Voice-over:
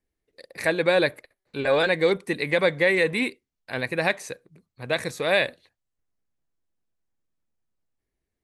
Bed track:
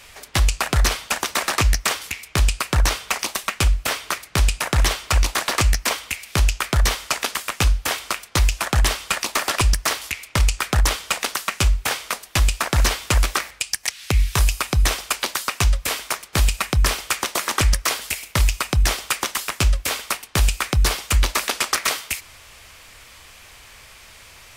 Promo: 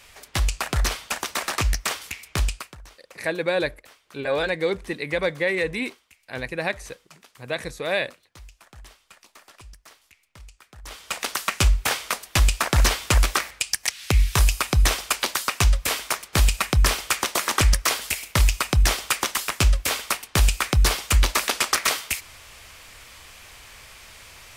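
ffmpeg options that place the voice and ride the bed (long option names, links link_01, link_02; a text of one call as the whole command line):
ffmpeg -i stem1.wav -i stem2.wav -filter_complex "[0:a]adelay=2600,volume=-3dB[link_01];[1:a]volume=22.5dB,afade=type=out:start_time=2.41:duration=0.35:silence=0.0707946,afade=type=in:start_time=10.83:duration=0.63:silence=0.0421697[link_02];[link_01][link_02]amix=inputs=2:normalize=0" out.wav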